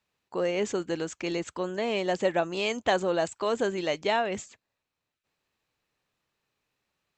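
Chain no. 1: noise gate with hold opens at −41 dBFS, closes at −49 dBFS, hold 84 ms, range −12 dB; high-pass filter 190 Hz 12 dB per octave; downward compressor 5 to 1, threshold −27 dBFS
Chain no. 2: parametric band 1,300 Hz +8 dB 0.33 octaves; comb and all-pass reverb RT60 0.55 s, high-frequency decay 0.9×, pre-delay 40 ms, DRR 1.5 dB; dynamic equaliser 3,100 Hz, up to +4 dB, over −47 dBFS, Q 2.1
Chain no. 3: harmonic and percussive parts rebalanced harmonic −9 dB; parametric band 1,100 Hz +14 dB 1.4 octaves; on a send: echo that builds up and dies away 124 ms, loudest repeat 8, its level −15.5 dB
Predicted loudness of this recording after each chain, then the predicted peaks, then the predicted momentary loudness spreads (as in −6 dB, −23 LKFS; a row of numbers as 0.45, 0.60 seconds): −33.0, −25.5, −26.0 LKFS; −15.0, −9.5, −4.0 dBFS; 4, 7, 12 LU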